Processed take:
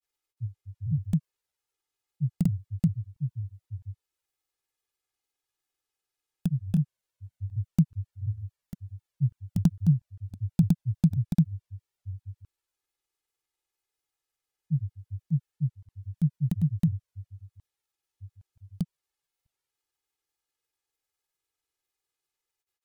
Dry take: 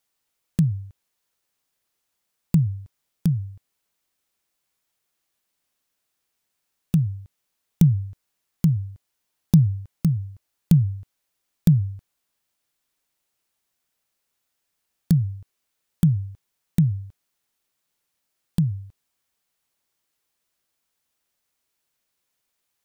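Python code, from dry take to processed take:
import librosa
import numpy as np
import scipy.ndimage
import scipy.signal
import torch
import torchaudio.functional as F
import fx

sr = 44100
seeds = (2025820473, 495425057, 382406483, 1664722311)

y = fx.env_flanger(x, sr, rest_ms=2.4, full_db=-17.5)
y = fx.granulator(y, sr, seeds[0], grain_ms=100.0, per_s=20.0, spray_ms=561.0, spread_st=0)
y = y * librosa.db_to_amplitude(-4.0)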